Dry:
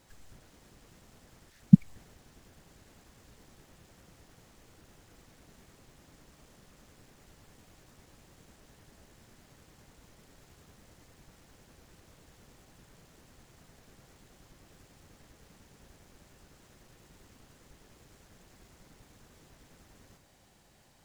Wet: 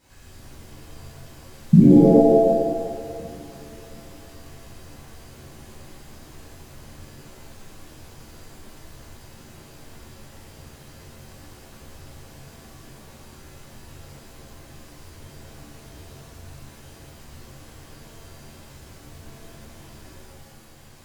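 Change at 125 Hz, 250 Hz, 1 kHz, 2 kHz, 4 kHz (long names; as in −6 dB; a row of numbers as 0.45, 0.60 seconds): +8.5, +12.0, +27.5, +12.0, +13.0 decibels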